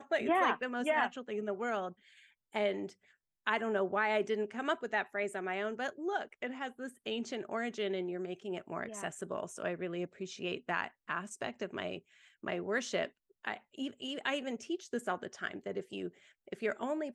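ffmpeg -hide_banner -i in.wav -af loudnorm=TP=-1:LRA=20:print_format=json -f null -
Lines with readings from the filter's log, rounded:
"input_i" : "-36.9",
"input_tp" : "-17.2",
"input_lra" : "4.4",
"input_thresh" : "-47.2",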